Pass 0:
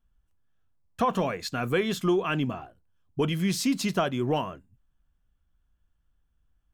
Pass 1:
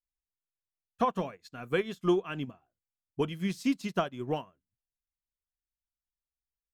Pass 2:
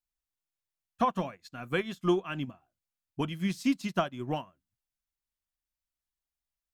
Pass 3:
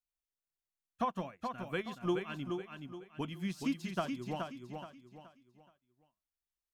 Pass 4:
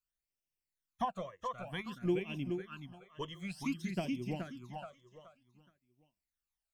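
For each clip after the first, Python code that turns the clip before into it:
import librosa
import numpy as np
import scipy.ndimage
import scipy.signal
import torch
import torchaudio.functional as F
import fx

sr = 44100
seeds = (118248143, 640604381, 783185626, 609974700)

y1 = fx.upward_expand(x, sr, threshold_db=-40.0, expansion=2.5)
y2 = fx.peak_eq(y1, sr, hz=440.0, db=-11.5, octaves=0.26)
y2 = y2 * 10.0 ** (1.5 / 20.0)
y3 = fx.echo_feedback(y2, sr, ms=424, feedback_pct=34, wet_db=-5.5)
y3 = y3 * 10.0 ** (-7.0 / 20.0)
y4 = fx.phaser_stages(y3, sr, stages=12, low_hz=240.0, high_hz=1400.0, hz=0.54, feedback_pct=30)
y4 = y4 * 10.0 ** (2.0 / 20.0)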